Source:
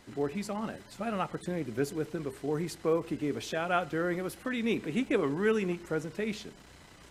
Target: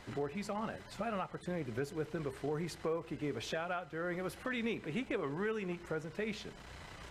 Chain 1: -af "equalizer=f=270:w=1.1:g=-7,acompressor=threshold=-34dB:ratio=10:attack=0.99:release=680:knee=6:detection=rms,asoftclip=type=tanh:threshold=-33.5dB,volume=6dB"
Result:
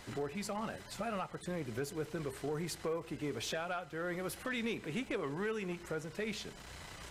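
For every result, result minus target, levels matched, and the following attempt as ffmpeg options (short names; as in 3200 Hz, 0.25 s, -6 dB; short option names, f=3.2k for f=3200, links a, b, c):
soft clip: distortion +12 dB; 8000 Hz band +7.0 dB
-af "equalizer=f=270:w=1.1:g=-7,acompressor=threshold=-34dB:ratio=10:attack=0.99:release=680:knee=6:detection=rms,asoftclip=type=tanh:threshold=-27dB,volume=6dB"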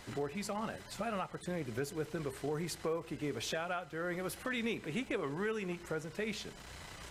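8000 Hz band +6.5 dB
-af "equalizer=f=270:w=1.1:g=-7,acompressor=threshold=-34dB:ratio=10:attack=0.99:release=680:knee=6:detection=rms,highshelf=f=5.2k:g=-10.5,asoftclip=type=tanh:threshold=-27dB,volume=6dB"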